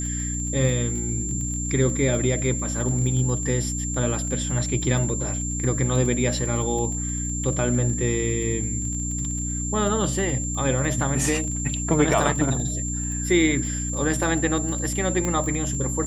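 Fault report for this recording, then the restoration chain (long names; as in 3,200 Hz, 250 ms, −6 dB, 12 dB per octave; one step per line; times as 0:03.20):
surface crackle 24 per second −30 dBFS
mains hum 60 Hz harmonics 5 −29 dBFS
whistle 7,300 Hz −29 dBFS
0:15.25: click −13 dBFS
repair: click removal
notch filter 7,300 Hz, Q 30
hum removal 60 Hz, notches 5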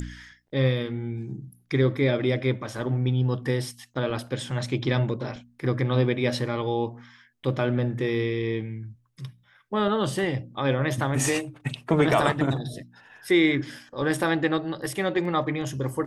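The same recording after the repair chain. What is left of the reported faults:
0:15.25: click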